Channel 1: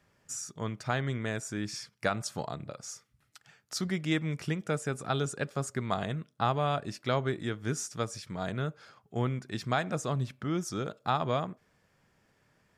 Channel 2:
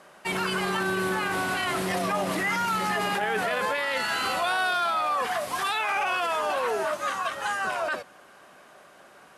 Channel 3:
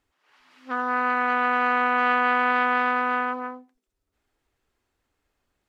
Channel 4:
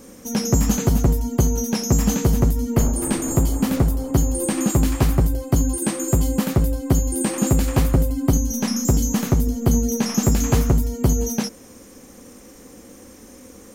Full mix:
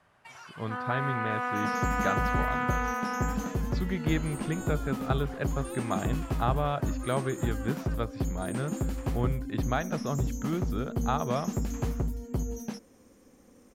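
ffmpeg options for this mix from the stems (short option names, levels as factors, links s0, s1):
-filter_complex "[0:a]lowpass=f=4200:w=0.5412,lowpass=f=4200:w=1.3066,volume=1[s0];[1:a]highpass=f=640:w=0.5412,highpass=f=640:w=1.3066,acompressor=threshold=0.0178:ratio=2.5,volume=0.251[s1];[2:a]volume=0.398[s2];[3:a]adelay=1300,volume=0.224[s3];[s0][s1][s2][s3]amix=inputs=4:normalize=0,highshelf=f=3400:g=-7.5"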